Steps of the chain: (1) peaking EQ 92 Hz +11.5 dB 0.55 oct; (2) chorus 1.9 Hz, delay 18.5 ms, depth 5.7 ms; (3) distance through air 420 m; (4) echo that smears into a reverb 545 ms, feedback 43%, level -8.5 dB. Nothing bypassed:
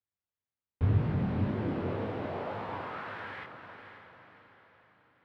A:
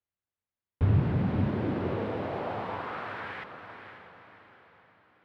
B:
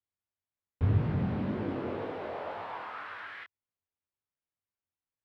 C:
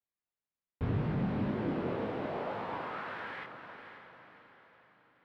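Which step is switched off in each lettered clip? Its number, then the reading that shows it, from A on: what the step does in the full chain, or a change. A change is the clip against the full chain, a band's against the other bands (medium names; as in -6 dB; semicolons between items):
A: 2, loudness change +2.5 LU; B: 4, echo-to-direct -7.5 dB to none; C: 1, 125 Hz band -5.5 dB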